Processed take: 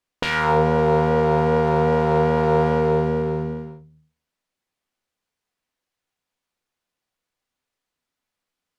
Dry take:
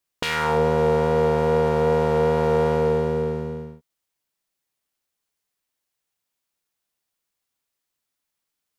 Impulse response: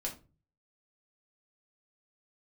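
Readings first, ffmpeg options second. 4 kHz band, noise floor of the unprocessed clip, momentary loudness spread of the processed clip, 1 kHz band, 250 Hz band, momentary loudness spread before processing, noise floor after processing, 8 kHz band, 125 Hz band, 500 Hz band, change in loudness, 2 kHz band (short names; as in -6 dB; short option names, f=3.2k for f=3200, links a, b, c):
0.0 dB, -82 dBFS, 8 LU, +3.5 dB, +3.5 dB, 7 LU, -85 dBFS, n/a, +3.0 dB, +0.5 dB, +1.5 dB, +3.0 dB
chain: -filter_complex "[0:a]aemphasis=mode=reproduction:type=50kf,asplit=2[a][b];[1:a]atrim=start_sample=2205[c];[b][c]afir=irnorm=-1:irlink=0,volume=-4.5dB[d];[a][d]amix=inputs=2:normalize=0"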